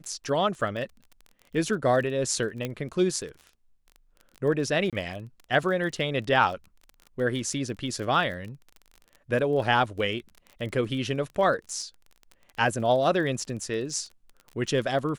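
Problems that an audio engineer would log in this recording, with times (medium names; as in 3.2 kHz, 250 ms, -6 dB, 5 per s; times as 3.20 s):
crackle 24 per s -35 dBFS
2.65 s: pop -16 dBFS
4.90–4.93 s: dropout 27 ms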